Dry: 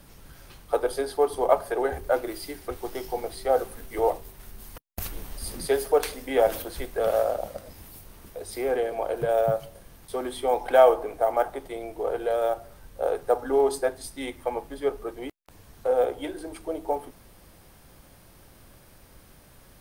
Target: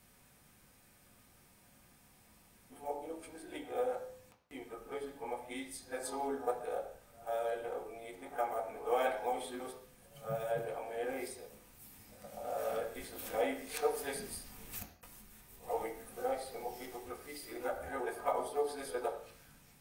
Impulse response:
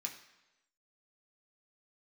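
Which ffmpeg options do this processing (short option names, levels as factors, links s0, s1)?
-filter_complex "[0:a]areverse,bandreject=f=56.63:t=h:w=4,bandreject=f=113.26:t=h:w=4,bandreject=f=169.89:t=h:w=4,bandreject=f=226.52:t=h:w=4,bandreject=f=283.15:t=h:w=4,bandreject=f=339.78:t=h:w=4,bandreject=f=396.41:t=h:w=4,bandreject=f=453.04:t=h:w=4,bandreject=f=509.67:t=h:w=4,bandreject=f=566.3:t=h:w=4,bandreject=f=622.93:t=h:w=4,bandreject=f=679.56:t=h:w=4,bandreject=f=736.19:t=h:w=4,bandreject=f=792.82:t=h:w=4,bandreject=f=849.45:t=h:w=4,bandreject=f=906.08:t=h:w=4,bandreject=f=962.71:t=h:w=4,bandreject=f=1019.34:t=h:w=4,bandreject=f=1075.97:t=h:w=4,bandreject=f=1132.6:t=h:w=4,bandreject=f=1189.23:t=h:w=4,bandreject=f=1245.86:t=h:w=4,bandreject=f=1302.49:t=h:w=4,bandreject=f=1359.12:t=h:w=4,bandreject=f=1415.75:t=h:w=4,bandreject=f=1472.38:t=h:w=4,bandreject=f=1529.01:t=h:w=4,bandreject=f=1585.64:t=h:w=4,bandreject=f=1642.27:t=h:w=4,bandreject=f=1698.9:t=h:w=4,bandreject=f=1755.53:t=h:w=4,bandreject=f=1812.16:t=h:w=4,bandreject=f=1868.79:t=h:w=4,bandreject=f=1925.42:t=h:w=4[s0];[1:a]atrim=start_sample=2205,afade=t=out:st=0.24:d=0.01,atrim=end_sample=11025[s1];[s0][s1]afir=irnorm=-1:irlink=0,volume=0.447"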